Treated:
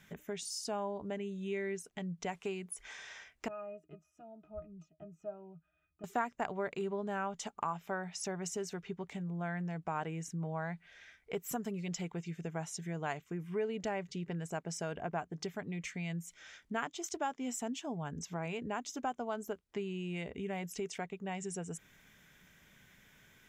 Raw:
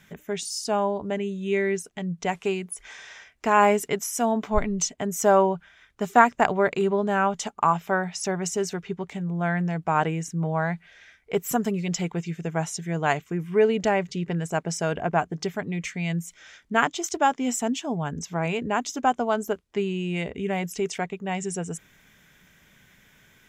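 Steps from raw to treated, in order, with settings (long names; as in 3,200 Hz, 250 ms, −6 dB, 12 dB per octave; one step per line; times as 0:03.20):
downward compressor 2 to 1, threshold −35 dBFS, peak gain reduction 13.5 dB
0:03.48–0:06.04: resonances in every octave D#, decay 0.13 s
level −5.5 dB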